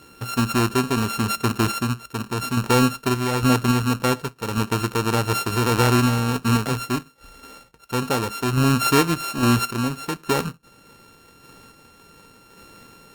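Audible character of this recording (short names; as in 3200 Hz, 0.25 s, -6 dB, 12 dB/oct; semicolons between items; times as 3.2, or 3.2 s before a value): a buzz of ramps at a fixed pitch in blocks of 32 samples; random-step tremolo; Opus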